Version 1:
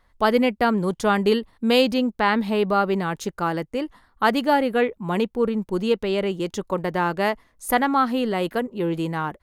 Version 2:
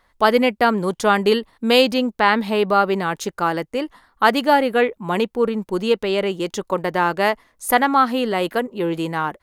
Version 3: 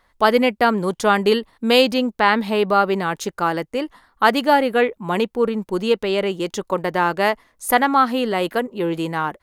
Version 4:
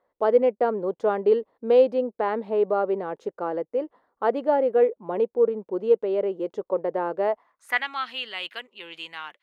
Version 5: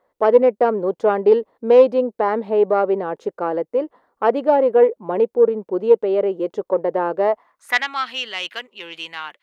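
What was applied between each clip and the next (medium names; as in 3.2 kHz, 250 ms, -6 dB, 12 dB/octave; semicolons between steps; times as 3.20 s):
bass shelf 220 Hz -9.5 dB; trim +5 dB
no audible change
band-pass sweep 490 Hz -> 2.9 kHz, 7.25–7.86 s
self-modulated delay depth 0.067 ms; trim +6 dB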